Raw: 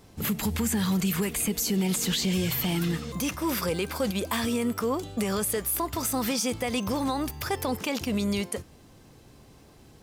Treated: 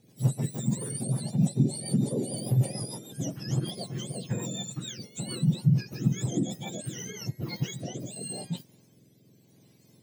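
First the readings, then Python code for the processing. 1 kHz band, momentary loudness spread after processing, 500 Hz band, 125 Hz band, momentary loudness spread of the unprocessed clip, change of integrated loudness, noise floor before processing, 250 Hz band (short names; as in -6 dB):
-14.5 dB, 11 LU, -8.5 dB, +5.5 dB, 4 LU, -3.0 dB, -53 dBFS, -3.5 dB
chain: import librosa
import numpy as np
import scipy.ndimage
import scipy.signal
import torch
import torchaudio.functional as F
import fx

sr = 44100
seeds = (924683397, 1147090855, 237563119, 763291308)

y = fx.octave_mirror(x, sr, pivot_hz=1300.0)
y = fx.rotary_switch(y, sr, hz=6.7, then_hz=0.85, switch_at_s=6.75)
y = fx.peak_eq(y, sr, hz=1400.0, db=-9.5, octaves=0.88)
y = F.gain(torch.from_numpy(y), -3.5).numpy()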